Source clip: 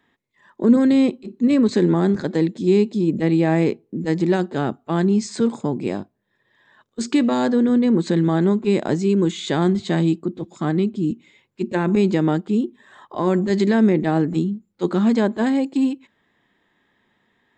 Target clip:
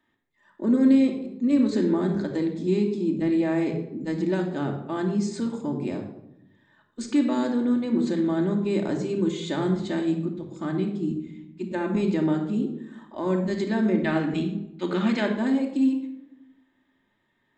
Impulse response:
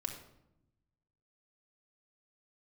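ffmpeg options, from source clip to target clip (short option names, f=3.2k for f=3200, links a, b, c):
-filter_complex "[0:a]asettb=1/sr,asplit=3[a][b][c];[a]atrim=end=14.044[d];[b]atrim=start=14.04:end=15.26,asetpts=PTS-STARTPTS,afade=t=in:d=0.004:c=qsin,afade=t=out:st=1.216:d=0.004:c=qsin,equalizer=f=2.4k:t=o:w=1.7:g=12.5[e];[c]atrim=start=15.256[f];[d][e]acrossfade=d=0.004:c1=hsin:c2=qsin[g];[g][f]acrossfade=d=0.004:c1=qsin:c2=hsin[h];[1:a]atrim=start_sample=2205[i];[h][i]afir=irnorm=-1:irlink=0,volume=-7dB"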